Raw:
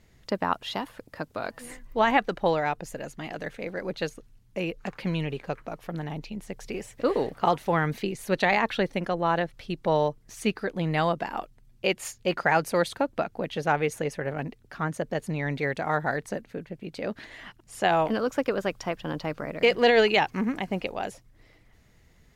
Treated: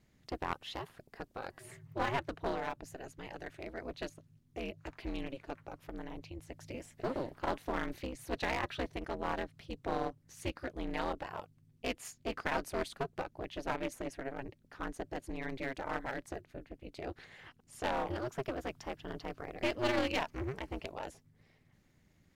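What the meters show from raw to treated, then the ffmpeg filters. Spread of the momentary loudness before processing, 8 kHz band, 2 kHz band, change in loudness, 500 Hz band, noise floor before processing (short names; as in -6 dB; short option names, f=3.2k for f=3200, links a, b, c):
14 LU, -9.0 dB, -12.0 dB, -12.0 dB, -12.5 dB, -59 dBFS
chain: -af "aeval=exprs='val(0)*sin(2*PI*130*n/s)':c=same,aeval=exprs='clip(val(0),-1,0.0447)':c=same,volume=-7dB"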